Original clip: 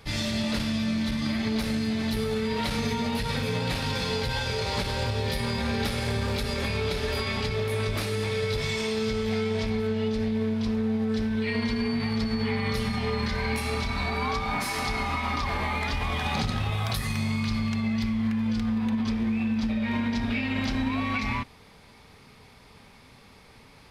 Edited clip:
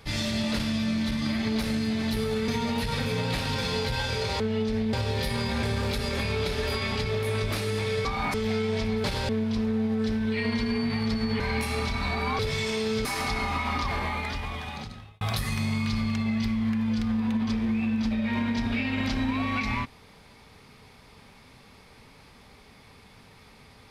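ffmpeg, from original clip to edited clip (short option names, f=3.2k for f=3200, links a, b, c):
-filter_complex "[0:a]asplit=13[a][b][c][d][e][f][g][h][i][j][k][l][m];[a]atrim=end=2.482[n];[b]atrim=start=2.848:end=4.772[o];[c]atrim=start=9.858:end=10.392[p];[d]atrim=start=5.018:end=5.722[q];[e]atrim=start=6.078:end=8.502[r];[f]atrim=start=14.338:end=14.632[s];[g]atrim=start=9.158:end=9.862[t];[h]atrim=start=4.768:end=5.022[u];[i]atrim=start=10.388:end=12.502[v];[j]atrim=start=13.348:end=14.342[w];[k]atrim=start=8.498:end=9.162[x];[l]atrim=start=14.628:end=16.79,asetpts=PTS-STARTPTS,afade=t=out:st=0.832:d=1.33[y];[m]atrim=start=16.79,asetpts=PTS-STARTPTS,afade=t=in:d=0.004:c=hsin[z];[n][o]acrossfade=d=0.004:c1=hsin:c2=hsin[aa];[aa][p]acrossfade=d=0.004:c1=hsin:c2=hsin[ab];[ab][q]acrossfade=d=0.004:c1=hsin:c2=hsin[ac];[ac][r]acrossfade=d=0.004:c1=hsin:c2=hsin[ad];[ad][s]acrossfade=d=0.004:c1=hsin:c2=hsin[ae];[ae][t]acrossfade=d=0.004:c1=hsin:c2=hsin[af];[af][u]acrossfade=d=0.004:c1=hsin:c2=hsin[ag];[ag][v]acrossfade=d=0.004:c1=hsin:c2=hsin[ah];[ah][w]acrossfade=d=0.004:c1=hsin:c2=hsin[ai];[ai][x]acrossfade=d=0.004:c1=hsin:c2=hsin[aj];[y][z]concat=n=2:v=0:a=1[ak];[aj][ak]acrossfade=d=0.004:c1=hsin:c2=hsin"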